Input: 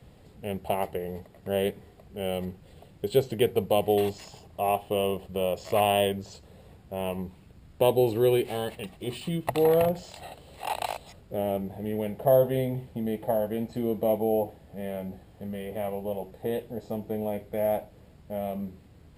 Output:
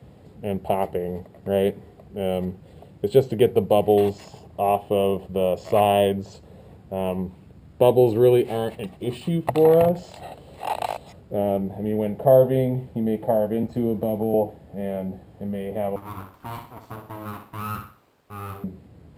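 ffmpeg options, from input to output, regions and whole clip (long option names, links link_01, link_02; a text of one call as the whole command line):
ffmpeg -i in.wav -filter_complex "[0:a]asettb=1/sr,asplit=3[link_01][link_02][link_03];[link_01]atrim=end=13.634[link_04];[link_02]atrim=start=13.63:end=14.34,asetpts=PTS-STARTPTS,afade=type=in:duration=0.004:curve=qsin,afade=type=out:start_time=0.706:duration=0.004:curve=qsin,equalizer=frequency=72:width_type=o:width=0.98:gain=5.5,acrossover=split=270|3000[link_05][link_06][link_07];[link_06]acompressor=threshold=-28dB:ratio=6:attack=3.2:release=140:knee=2.83:detection=peak[link_08];[link_05][link_08][link_07]amix=inputs=3:normalize=0,aeval=exprs='sgn(val(0))*max(abs(val(0))-0.001,0)':channel_layout=same[link_09];[link_03]atrim=start=14.336[link_10];[link_04][link_09]acrossfade=duration=0.004:curve1=hsin:curve2=qsin[link_11];[link_11][link_10]acrossfade=duration=0.004:curve1=qsin:curve2=hsin,asettb=1/sr,asplit=3[link_12][link_13][link_14];[link_12]atrim=end=15.964[link_15];[link_13]atrim=start=15.96:end=18.64,asetpts=PTS-STARTPTS,afade=type=in:duration=0.004:curve=qsin,afade=type=out:start_time=2.676:duration=0.004:curve=qsin,highpass=frequency=640:poles=1,aeval=exprs='abs(val(0))':channel_layout=same,aecho=1:1:62|124|186|248:0.422|0.152|0.0547|0.0197,atrim=end_sample=118188[link_16];[link_14]atrim=start=18.636[link_17];[link_15][link_16]acrossfade=duration=0.004:curve1=hsin:curve2=qsin[link_18];[link_18][link_17]acrossfade=duration=0.004:curve1=qsin:curve2=hsin,highpass=76,tiltshelf=frequency=1400:gain=4.5,volume=2.5dB" out.wav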